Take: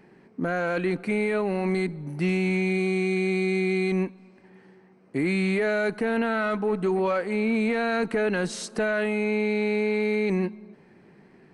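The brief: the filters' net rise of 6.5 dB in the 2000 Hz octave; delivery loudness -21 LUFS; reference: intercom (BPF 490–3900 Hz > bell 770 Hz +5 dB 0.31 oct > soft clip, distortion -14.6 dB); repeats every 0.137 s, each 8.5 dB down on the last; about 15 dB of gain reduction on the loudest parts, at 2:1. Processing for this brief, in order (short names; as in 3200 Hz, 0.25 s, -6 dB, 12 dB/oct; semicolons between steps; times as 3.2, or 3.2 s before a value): bell 2000 Hz +8.5 dB; compressor 2:1, threshold -48 dBFS; BPF 490–3900 Hz; bell 770 Hz +5 dB 0.31 oct; feedback echo 0.137 s, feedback 38%, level -8.5 dB; soft clip -36 dBFS; gain +21 dB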